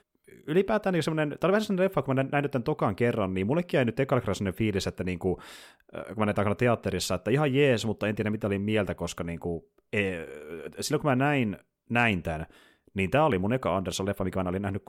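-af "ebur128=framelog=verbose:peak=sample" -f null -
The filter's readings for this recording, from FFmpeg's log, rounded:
Integrated loudness:
  I:         -27.7 LUFS
  Threshold: -38.2 LUFS
Loudness range:
  LRA:         2.6 LU
  Threshold: -48.2 LUFS
  LRA low:   -29.7 LUFS
  LRA high:  -27.0 LUFS
Sample peak:
  Peak:      -10.2 dBFS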